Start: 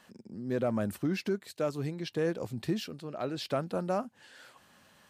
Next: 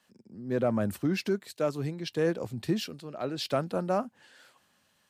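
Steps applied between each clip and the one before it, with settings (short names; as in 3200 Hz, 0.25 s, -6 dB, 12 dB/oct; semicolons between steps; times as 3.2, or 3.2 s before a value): three-band expander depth 40%; gain +2.5 dB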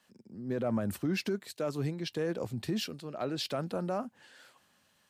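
limiter -23.5 dBFS, peak gain reduction 7.5 dB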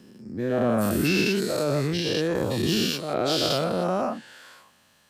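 spectral dilation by 0.24 s; gain +3 dB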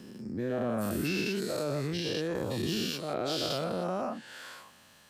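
compressor 2:1, threshold -40 dBFS, peak gain reduction 11.5 dB; gain +2.5 dB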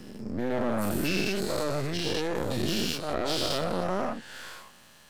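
half-wave gain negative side -12 dB; gain +6.5 dB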